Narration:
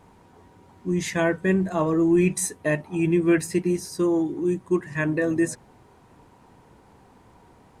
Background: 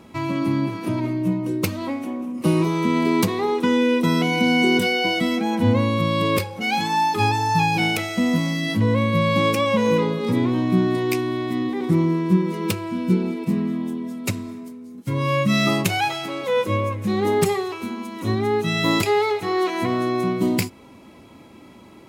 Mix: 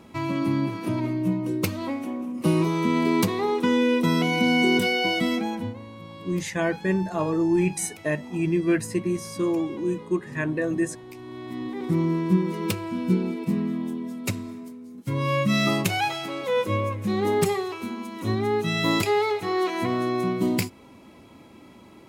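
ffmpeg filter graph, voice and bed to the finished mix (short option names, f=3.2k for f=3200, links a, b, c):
-filter_complex "[0:a]adelay=5400,volume=-2.5dB[a];[1:a]volume=15.5dB,afade=t=out:st=5.34:d=0.4:silence=0.11885,afade=t=in:st=11.14:d=1.03:silence=0.125893[b];[a][b]amix=inputs=2:normalize=0"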